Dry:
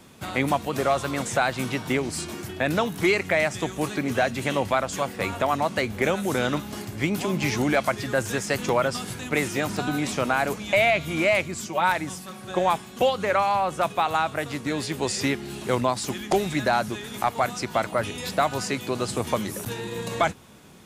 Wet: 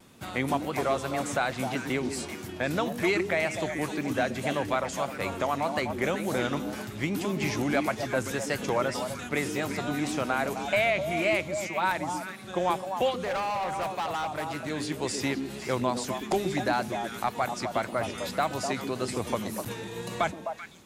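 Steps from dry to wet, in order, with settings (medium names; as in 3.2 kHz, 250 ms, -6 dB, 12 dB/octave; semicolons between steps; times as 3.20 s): repeats whose band climbs or falls 127 ms, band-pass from 280 Hz, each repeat 1.4 oct, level -2 dB; vibrato 1.8 Hz 45 cents; 13.11–14.70 s: hard clipper -22 dBFS, distortion -18 dB; trim -5 dB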